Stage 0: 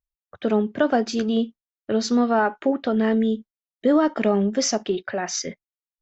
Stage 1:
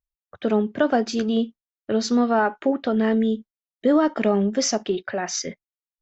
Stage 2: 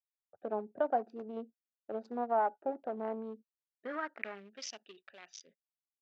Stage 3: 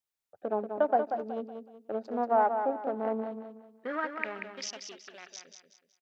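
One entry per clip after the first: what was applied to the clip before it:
nothing audible
Wiener smoothing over 41 samples; band-pass sweep 770 Hz -> 3100 Hz, 3.2–4.69; gain -5 dB
feedback echo 0.186 s, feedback 34%, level -7 dB; gain +5 dB

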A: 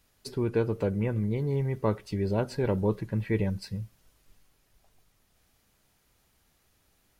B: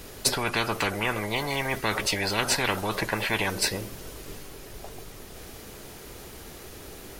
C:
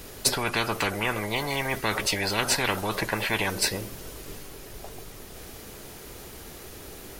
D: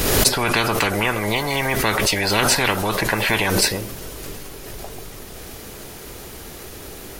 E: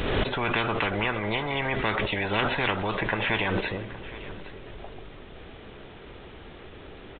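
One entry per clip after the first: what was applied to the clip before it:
bell 400 Hz +10 dB 0.95 oct; spectral compressor 10:1; gain +1.5 dB
high shelf 10000 Hz +3 dB
backwards sustainer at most 31 dB/s; gain +6 dB
echo 0.817 s -17 dB; downsampling 8000 Hz; gain -6.5 dB

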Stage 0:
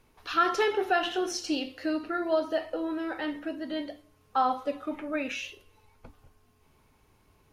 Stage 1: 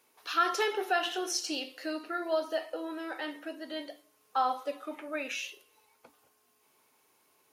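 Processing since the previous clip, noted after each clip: HPF 370 Hz 12 dB/oct; high shelf 5700 Hz +11 dB; gain -3 dB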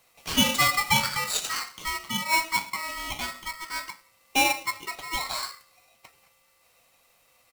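comb 1.3 ms, depth 36%; small resonant body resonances 420/1100/2700 Hz, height 9 dB; polarity switched at an audio rate 1600 Hz; gain +4 dB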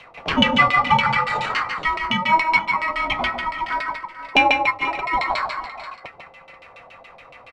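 LFO low-pass saw down 7.1 Hz 590–3100 Hz; tapped delay 0.147/0.445/0.484 s -6.5/-19.5/-18 dB; three-band squash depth 40%; gain +6 dB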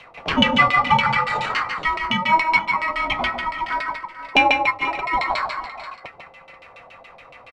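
downsampling 32000 Hz

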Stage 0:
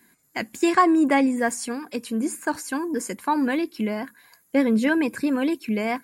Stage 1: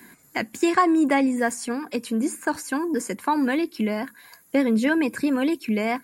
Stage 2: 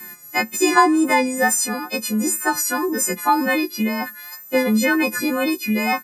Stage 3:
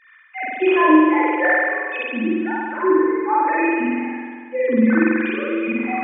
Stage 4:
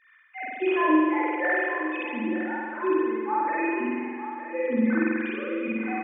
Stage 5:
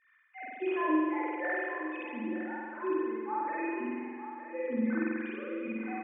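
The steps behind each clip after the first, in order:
three-band squash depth 40%
frequency quantiser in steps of 3 st; comb 5.6 ms, depth 47%; wow and flutter 36 cents; gain +2.5 dB
sine-wave speech; reverb removal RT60 2 s; spring tank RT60 1.8 s, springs 45 ms, chirp 65 ms, DRR -8.5 dB; gain -6.5 dB
echo 0.909 s -11 dB; gain -8 dB
air absorption 220 m; gain -7 dB

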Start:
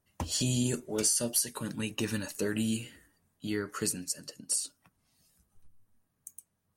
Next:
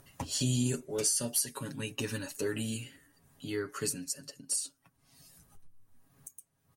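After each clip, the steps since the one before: comb 7.3 ms, depth 68%; upward compressor, threshold -42 dBFS; gain -3.5 dB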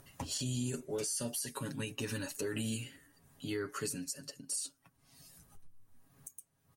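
limiter -27.5 dBFS, peak gain reduction 11.5 dB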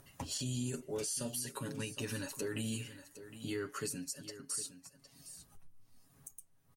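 echo 0.761 s -13.5 dB; gain -1.5 dB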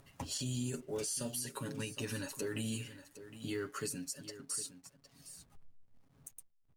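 block floating point 7-bit; backlash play -59.5 dBFS

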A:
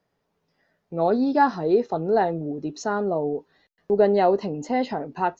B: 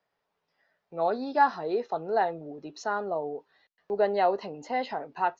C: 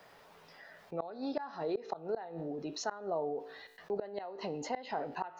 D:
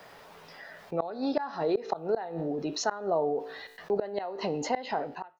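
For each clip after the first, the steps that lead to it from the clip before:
three-band isolator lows -13 dB, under 540 Hz, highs -21 dB, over 5900 Hz; gain -1.5 dB
resonator 56 Hz, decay 0.52 s, harmonics all, mix 40%; flipped gate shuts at -22 dBFS, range -26 dB; fast leveller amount 50%; gain -3 dB
ending faded out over 0.53 s; gain +7.5 dB

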